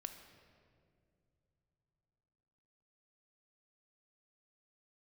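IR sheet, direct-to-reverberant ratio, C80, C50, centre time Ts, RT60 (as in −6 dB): 6.5 dB, 9.0 dB, 8.0 dB, 28 ms, non-exponential decay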